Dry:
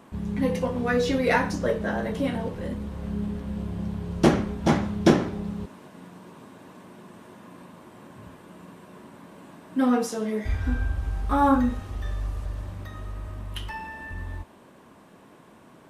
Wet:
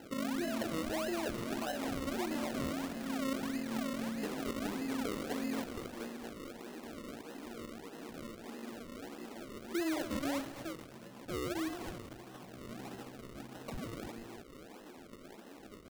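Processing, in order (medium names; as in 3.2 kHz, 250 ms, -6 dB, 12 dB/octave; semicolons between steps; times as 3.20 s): feedback echo behind a band-pass 237 ms, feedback 55%, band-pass 700 Hz, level -13.5 dB; compression 16:1, threshold -31 dBFS, peak gain reduction 21 dB; tape spacing loss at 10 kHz 32 dB; peak limiter -30 dBFS, peak gain reduction 8.5 dB; pitch shift +4.5 st; steep high-pass 180 Hz 36 dB/octave; peaking EQ 1.6 kHz -9.5 dB 0.81 oct; decimation with a swept rate 37×, swing 100% 1.6 Hz; bit-crushed delay 228 ms, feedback 80%, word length 7-bit, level -10.5 dB; trim +2.5 dB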